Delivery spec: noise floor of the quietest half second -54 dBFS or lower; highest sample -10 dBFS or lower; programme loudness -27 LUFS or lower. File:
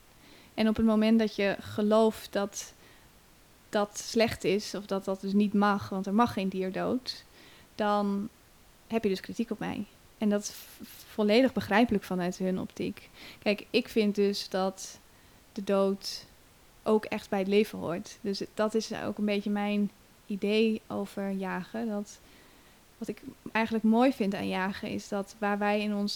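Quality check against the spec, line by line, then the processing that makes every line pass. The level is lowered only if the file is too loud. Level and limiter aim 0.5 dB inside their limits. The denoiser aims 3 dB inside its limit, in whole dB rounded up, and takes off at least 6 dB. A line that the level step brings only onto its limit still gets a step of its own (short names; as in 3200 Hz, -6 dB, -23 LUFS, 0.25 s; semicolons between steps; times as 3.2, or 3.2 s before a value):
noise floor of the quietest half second -58 dBFS: OK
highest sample -11.0 dBFS: OK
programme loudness -29.5 LUFS: OK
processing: none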